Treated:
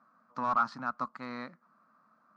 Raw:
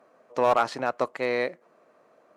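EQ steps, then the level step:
drawn EQ curve 120 Hz 0 dB, 220 Hz +10 dB, 410 Hz −17 dB, 690 Hz −7 dB, 1,300 Hz +13 dB, 1,900 Hz −3 dB, 3,000 Hz −9 dB, 4,700 Hz +1 dB, 10,000 Hz −17 dB
dynamic equaliser 1,800 Hz, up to −3 dB, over −34 dBFS, Q 0.95
low-shelf EQ 65 Hz +6.5 dB
−9.0 dB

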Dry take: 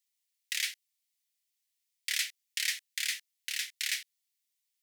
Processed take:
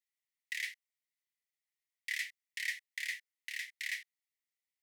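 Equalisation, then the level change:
four-pole ladder high-pass 1,800 Hz, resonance 75%
−1.5 dB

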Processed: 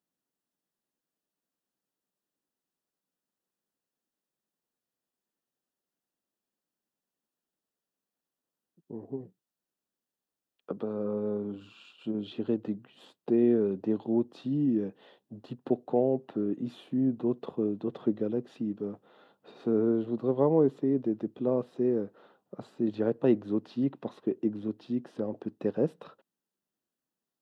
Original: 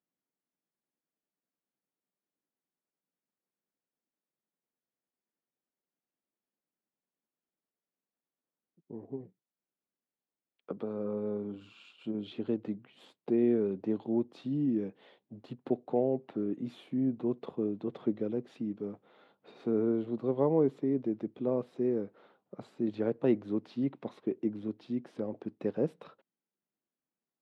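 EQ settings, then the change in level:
notch filter 2,200 Hz, Q 5.3
+3.0 dB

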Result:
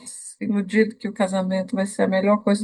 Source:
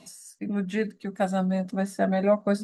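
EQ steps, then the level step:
EQ curve with evenly spaced ripples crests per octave 0.97, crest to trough 15 dB
+5.0 dB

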